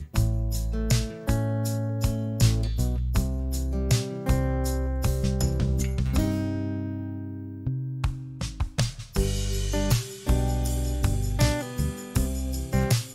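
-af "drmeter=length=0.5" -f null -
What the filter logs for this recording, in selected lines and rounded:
Channel 1: DR: 10.6
Overall DR: 10.6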